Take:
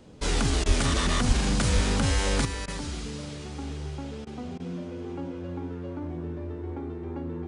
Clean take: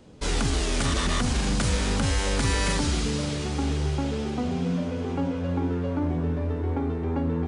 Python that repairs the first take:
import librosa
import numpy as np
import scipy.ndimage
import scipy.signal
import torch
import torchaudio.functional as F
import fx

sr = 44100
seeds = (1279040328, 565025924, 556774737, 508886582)

y = fx.notch(x, sr, hz=350.0, q=30.0)
y = fx.fix_deplosive(y, sr, at_s=(0.67, 1.27, 1.74))
y = fx.fix_interpolate(y, sr, at_s=(0.64, 2.66, 4.25, 4.58), length_ms=17.0)
y = fx.gain(y, sr, db=fx.steps((0.0, 0.0), (2.45, 9.0)))